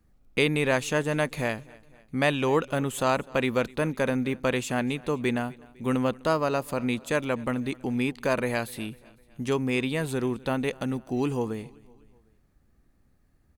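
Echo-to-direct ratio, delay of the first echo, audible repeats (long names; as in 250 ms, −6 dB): −22.0 dB, 252 ms, 3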